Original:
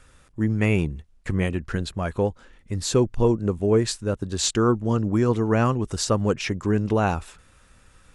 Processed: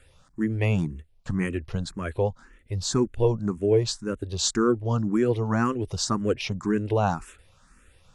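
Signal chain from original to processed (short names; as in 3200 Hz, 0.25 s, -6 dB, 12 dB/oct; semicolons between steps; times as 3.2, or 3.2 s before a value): endless phaser +1.9 Hz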